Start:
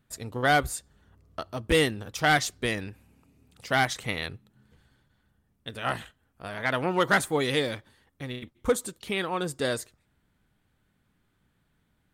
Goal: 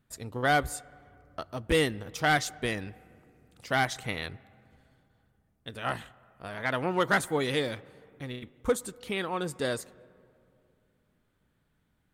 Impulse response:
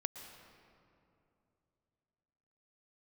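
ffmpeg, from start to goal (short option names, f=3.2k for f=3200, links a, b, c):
-filter_complex "[0:a]asplit=2[a][b];[1:a]atrim=start_sample=2205,lowpass=2.5k[c];[b][c]afir=irnorm=-1:irlink=0,volume=-14dB[d];[a][d]amix=inputs=2:normalize=0,volume=-3.5dB"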